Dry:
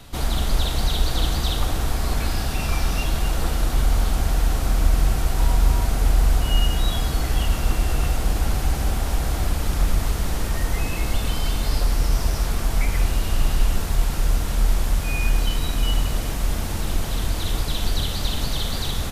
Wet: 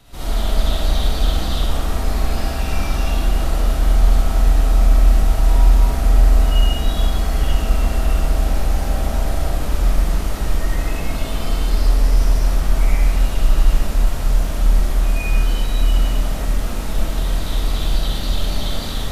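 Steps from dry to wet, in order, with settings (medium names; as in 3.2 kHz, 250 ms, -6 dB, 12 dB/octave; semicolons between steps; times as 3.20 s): algorithmic reverb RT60 1.4 s, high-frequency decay 0.4×, pre-delay 25 ms, DRR -8.5 dB; trim -7.5 dB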